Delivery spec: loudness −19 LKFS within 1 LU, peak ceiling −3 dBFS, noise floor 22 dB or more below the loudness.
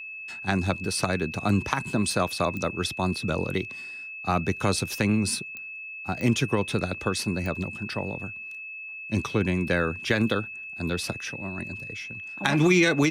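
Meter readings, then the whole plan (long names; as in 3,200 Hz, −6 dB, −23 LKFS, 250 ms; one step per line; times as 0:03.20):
number of clicks 4; interfering tone 2,600 Hz; level of the tone −36 dBFS; integrated loudness −27.0 LKFS; sample peak −8.5 dBFS; target loudness −19.0 LKFS
→ click removal
notch filter 2,600 Hz, Q 30
level +8 dB
brickwall limiter −3 dBFS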